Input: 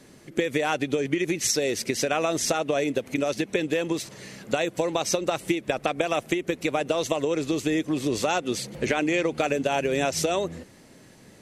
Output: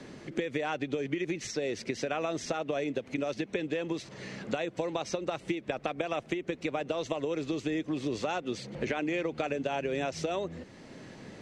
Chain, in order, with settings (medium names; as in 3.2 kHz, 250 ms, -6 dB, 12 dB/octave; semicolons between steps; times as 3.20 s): treble shelf 11 kHz +3 dB; in parallel at 0 dB: compression, threshold -36 dBFS, peak gain reduction 16 dB; on the sum: distance through air 120 m; three bands compressed up and down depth 40%; trim -8.5 dB